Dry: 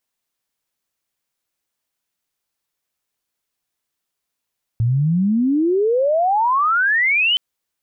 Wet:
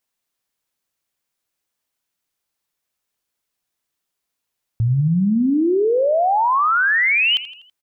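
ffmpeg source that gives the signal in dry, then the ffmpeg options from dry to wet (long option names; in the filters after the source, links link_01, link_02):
-f lavfi -i "aevalsrc='pow(10,(-14+0.5*t/2.57)/20)*sin(2*PI*110*2.57/log(3100/110)*(exp(log(3100/110)*t/2.57)-1))':duration=2.57:sample_rate=44100"
-af "aecho=1:1:82|164|246|328:0.178|0.0854|0.041|0.0197"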